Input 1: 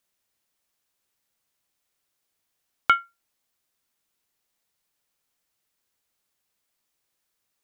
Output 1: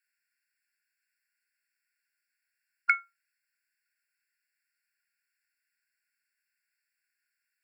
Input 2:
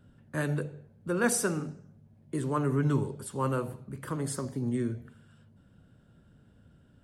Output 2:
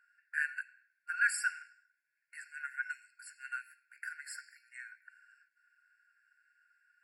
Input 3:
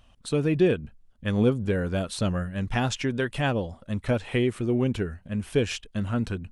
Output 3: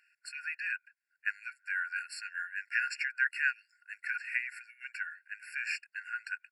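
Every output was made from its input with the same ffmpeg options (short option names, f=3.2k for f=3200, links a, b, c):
-filter_complex "[0:a]equalizer=f=1.3k:t=o:w=1.7:g=14.5,acrossover=split=160|1400[a][b][c];[b]alimiter=limit=-18dB:level=0:latency=1[d];[a][d][c]amix=inputs=3:normalize=0,afftfilt=real='re*eq(mod(floor(b*sr/1024/1400),2),1)':imag='im*eq(mod(floor(b*sr/1024/1400),2),1)':win_size=1024:overlap=0.75,volume=-6dB"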